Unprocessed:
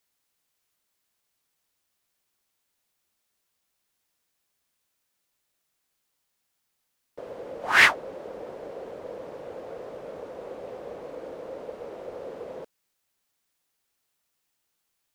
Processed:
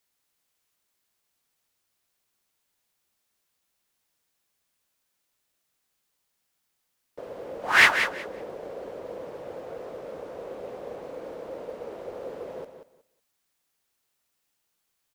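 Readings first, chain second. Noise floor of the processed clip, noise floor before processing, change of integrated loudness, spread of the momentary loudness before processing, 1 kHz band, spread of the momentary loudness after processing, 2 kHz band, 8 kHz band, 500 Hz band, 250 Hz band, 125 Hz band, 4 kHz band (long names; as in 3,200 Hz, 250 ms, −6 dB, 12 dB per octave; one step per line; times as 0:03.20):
−77 dBFS, −78 dBFS, −2.0 dB, 21 LU, +0.5 dB, 21 LU, +0.5 dB, +0.5 dB, +0.5 dB, +0.5 dB, +0.5 dB, +0.5 dB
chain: noise that follows the level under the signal 35 dB
repeating echo 184 ms, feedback 19%, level −9 dB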